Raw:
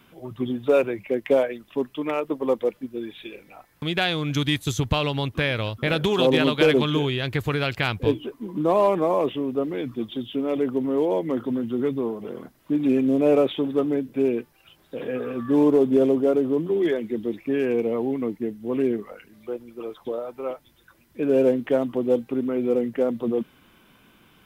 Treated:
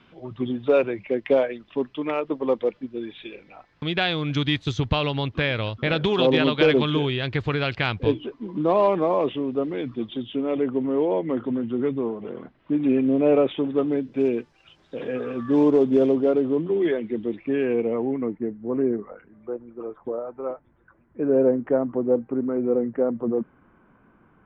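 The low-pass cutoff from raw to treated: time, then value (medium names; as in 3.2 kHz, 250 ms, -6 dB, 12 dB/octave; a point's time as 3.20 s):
low-pass 24 dB/octave
9.82 s 4.8 kHz
10.66 s 3.2 kHz
13.69 s 3.2 kHz
14.22 s 6.6 kHz
15.97 s 6.6 kHz
16.72 s 3.4 kHz
17.58 s 3.4 kHz
18.68 s 1.6 kHz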